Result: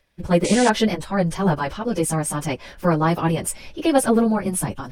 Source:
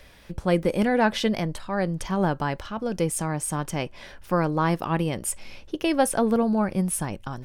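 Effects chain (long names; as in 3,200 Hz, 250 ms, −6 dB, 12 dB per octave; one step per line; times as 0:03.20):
noise gate with hold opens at −36 dBFS
time stretch by phase vocoder 0.66×
sound drawn into the spectrogram noise, 0:00.44–0:00.70, 1,900–9,900 Hz −36 dBFS
level +7.5 dB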